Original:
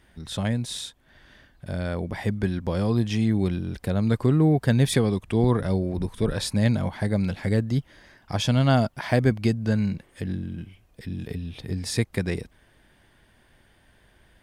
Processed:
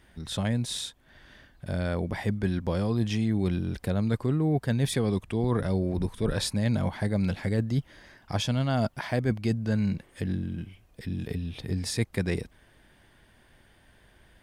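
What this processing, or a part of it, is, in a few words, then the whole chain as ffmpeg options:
compression on the reversed sound: -af "areverse,acompressor=threshold=-22dB:ratio=6,areverse"

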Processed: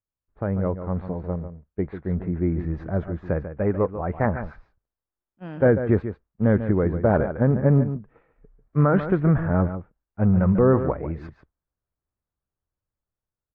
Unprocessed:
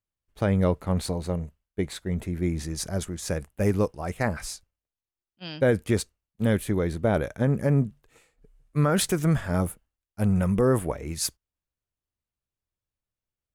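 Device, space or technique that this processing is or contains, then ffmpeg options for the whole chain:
action camera in a waterproof case: -filter_complex "[0:a]asettb=1/sr,asplit=3[a][b][c];[a]atrim=end=3.494[d];[b]atrim=start=3.49:end=3.94,asetpts=PTS-STARTPTS,afade=t=in:d=0.004:c=qsin,afade=t=out:st=0.446:d=0.004:c=qsin,lowshelf=f=320:g=-6.5[e];[c]atrim=start=3.936[f];[d][e]acrossfade=d=0.004:c1=hsin:c2=qsin[g];[g][f]acrossfade=d=0.004:c1=qsin:c2=hsin,lowpass=f=1.6k:w=0.5412,lowpass=f=1.6k:w=1.3066,aecho=1:1:144:0.299,dynaudnorm=f=720:g=5:m=7dB,volume=-2.5dB" -ar 44100 -c:a aac -b:a 48k

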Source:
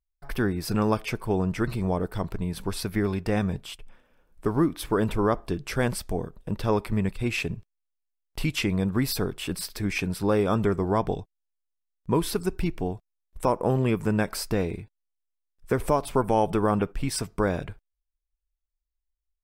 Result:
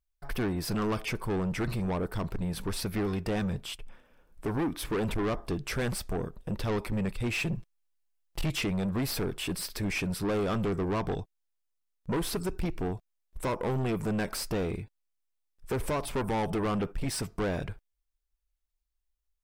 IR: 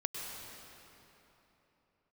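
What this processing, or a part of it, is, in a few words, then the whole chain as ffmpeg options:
saturation between pre-emphasis and de-emphasis: -filter_complex "[0:a]asettb=1/sr,asplit=3[a][b][c];[a]atrim=end=7.394[d];[b]atrim=start=7.39:end=8.57,asetpts=PTS-STARTPTS,afade=t=in:d=0.004:c=qsin,afade=t=out:st=1.176:d=0.004:c=qsin,aecho=1:1:5.9:0.81,atrim=end_sample=52038[e];[c]atrim=start=8.566[f];[d][e]acrossfade=d=0.004:c1=hsin:c2=qsin[g];[g][f]acrossfade=d=0.004:c1=qsin:c2=hsin,highshelf=f=8.5k:g=11,asoftclip=type=tanh:threshold=-27.5dB,highshelf=f=8.5k:g=-11,volume=1.5dB"

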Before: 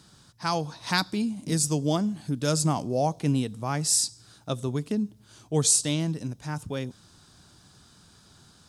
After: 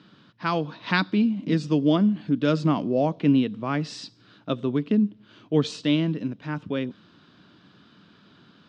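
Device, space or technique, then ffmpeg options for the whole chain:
kitchen radio: -af "highpass=180,equalizer=f=200:t=q:w=4:g=5,equalizer=f=290:t=q:w=4:g=5,equalizer=f=800:t=q:w=4:g=-8,equalizer=f=2.9k:t=q:w=4:g=3,lowpass=f=3.4k:w=0.5412,lowpass=f=3.4k:w=1.3066,volume=4dB"

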